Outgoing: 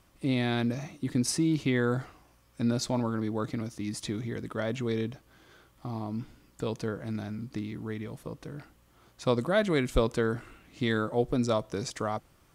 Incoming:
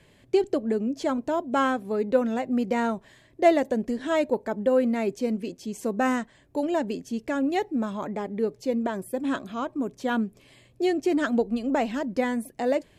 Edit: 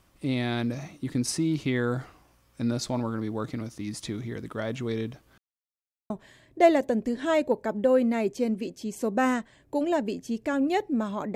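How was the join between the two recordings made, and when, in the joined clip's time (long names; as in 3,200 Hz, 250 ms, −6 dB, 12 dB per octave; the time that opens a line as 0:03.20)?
outgoing
0:05.38–0:06.10: silence
0:06.10: continue with incoming from 0:02.92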